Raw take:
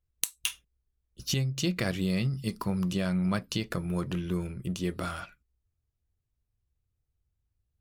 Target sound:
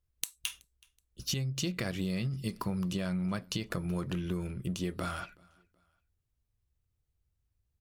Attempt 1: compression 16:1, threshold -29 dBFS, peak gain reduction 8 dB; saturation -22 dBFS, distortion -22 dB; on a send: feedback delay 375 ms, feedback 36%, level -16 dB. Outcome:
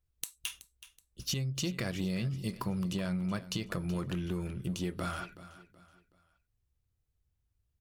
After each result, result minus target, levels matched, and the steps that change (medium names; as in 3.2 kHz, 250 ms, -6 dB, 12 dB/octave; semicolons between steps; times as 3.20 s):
saturation: distortion +13 dB; echo-to-direct +11.5 dB
change: saturation -12.5 dBFS, distortion -34 dB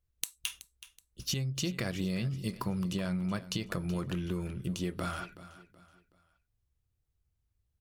echo-to-direct +11.5 dB
change: feedback delay 375 ms, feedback 36%, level -27.5 dB